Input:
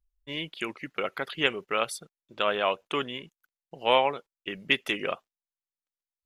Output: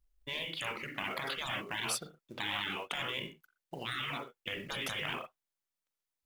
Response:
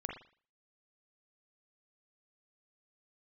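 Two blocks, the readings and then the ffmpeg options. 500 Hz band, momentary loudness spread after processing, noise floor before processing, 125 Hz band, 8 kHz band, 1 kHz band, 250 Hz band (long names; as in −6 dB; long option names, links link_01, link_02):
−15.5 dB, 7 LU, below −85 dBFS, −2.0 dB, +2.0 dB, −11.0 dB, −9.0 dB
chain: -filter_complex "[0:a]asplit=2[link_01][link_02];[1:a]atrim=start_sample=2205,atrim=end_sample=6174[link_03];[link_02][link_03]afir=irnorm=-1:irlink=0,volume=0dB[link_04];[link_01][link_04]amix=inputs=2:normalize=0,afftfilt=real='re*lt(hypot(re,im),0.0891)':imag='im*lt(hypot(re,im),0.0891)':win_size=1024:overlap=0.75,acrusher=bits=6:mode=log:mix=0:aa=0.000001,volume=-1.5dB"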